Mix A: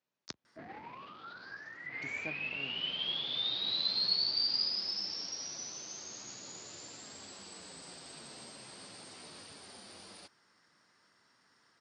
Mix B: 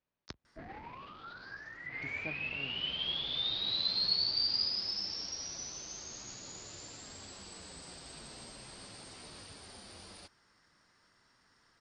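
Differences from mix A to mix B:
speech: add high-frequency loss of the air 130 metres
master: remove high-pass filter 150 Hz 12 dB per octave

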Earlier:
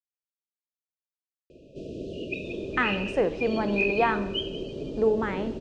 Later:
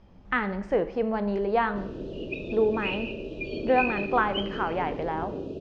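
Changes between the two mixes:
speech: entry −2.45 s
master: add high-frequency loss of the air 120 metres

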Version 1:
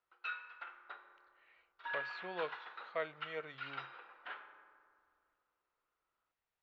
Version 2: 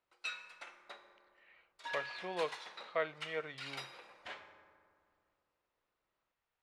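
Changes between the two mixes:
speech +3.5 dB
background: remove loudspeaker in its box 380–3,000 Hz, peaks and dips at 590 Hz −8 dB, 1,400 Hz +9 dB, 2,200 Hz −6 dB

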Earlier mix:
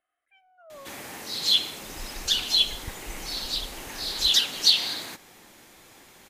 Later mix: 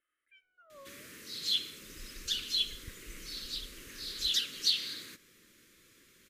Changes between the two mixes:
background −9.5 dB
master: add Butterworth band-reject 790 Hz, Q 1

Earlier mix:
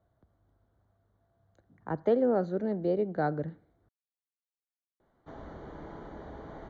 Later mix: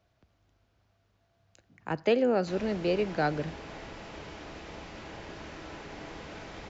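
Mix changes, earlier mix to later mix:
background: entry −2.80 s
master: remove moving average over 17 samples

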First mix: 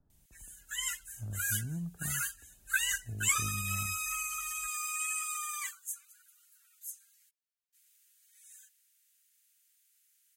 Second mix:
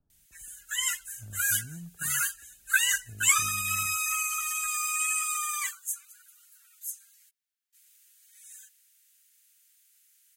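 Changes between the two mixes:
speech −5.0 dB
background +6.5 dB

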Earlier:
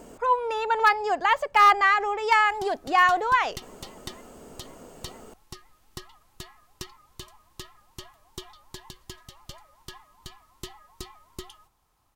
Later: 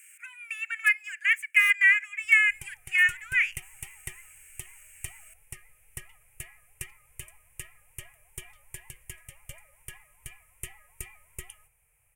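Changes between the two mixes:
speech: add Butterworth high-pass 1,500 Hz 48 dB per octave
master: add drawn EQ curve 140 Hz 0 dB, 270 Hz −26 dB, 480 Hz −1 dB, 1,100 Hz −15 dB, 2,400 Hz +12 dB, 4,100 Hz −26 dB, 9,200 Hz +12 dB, 14,000 Hz +5 dB

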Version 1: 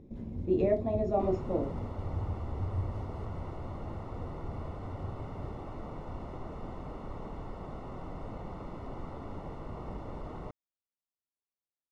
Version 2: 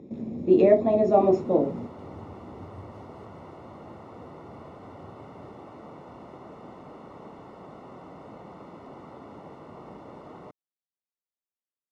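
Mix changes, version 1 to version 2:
speech +10.0 dB
master: add high-pass filter 180 Hz 12 dB per octave

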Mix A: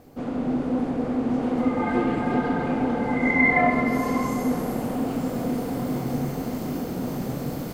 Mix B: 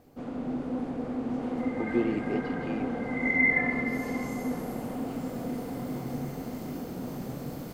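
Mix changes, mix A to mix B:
first sound −7.5 dB
second sound: add resonant band-pass 1,900 Hz, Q 5.6

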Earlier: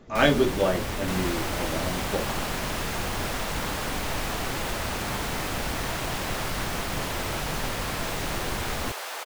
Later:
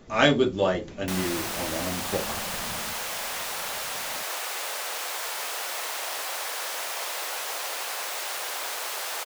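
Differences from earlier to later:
first sound: muted
master: add high-shelf EQ 4,000 Hz +7.5 dB

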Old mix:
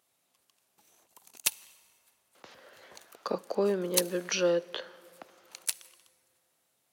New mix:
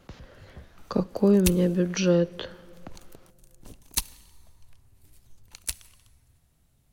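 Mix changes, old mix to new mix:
speech: entry −2.35 s
master: remove high-pass filter 490 Hz 12 dB per octave

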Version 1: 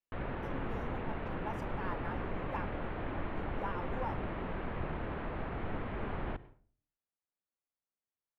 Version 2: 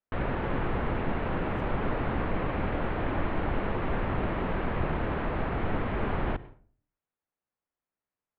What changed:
speech −9.5 dB
background +8.5 dB

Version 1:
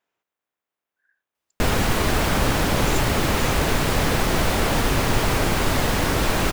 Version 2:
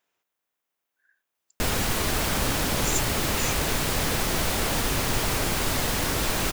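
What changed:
background −6.5 dB
master: add high-shelf EQ 3,500 Hz +9 dB

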